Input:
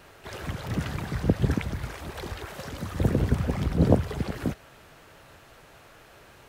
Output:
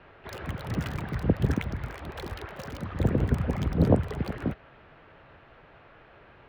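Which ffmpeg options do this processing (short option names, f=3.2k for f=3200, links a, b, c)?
-filter_complex "[0:a]highshelf=f=3k:g=3,adynamicsmooth=sensitivity=7:basefreq=6.7k,acrossover=split=340|3200[a][b][c];[c]acrusher=bits=6:mix=0:aa=0.000001[d];[a][b][d]amix=inputs=3:normalize=0,volume=-1dB"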